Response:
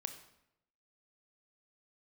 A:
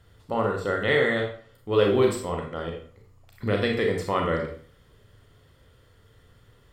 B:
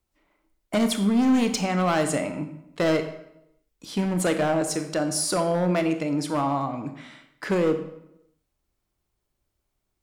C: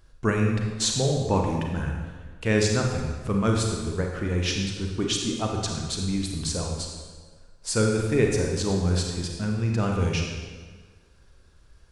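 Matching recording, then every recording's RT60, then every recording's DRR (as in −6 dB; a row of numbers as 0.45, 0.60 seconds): B; 0.50, 0.85, 1.5 seconds; 1.0, 7.5, 0.5 decibels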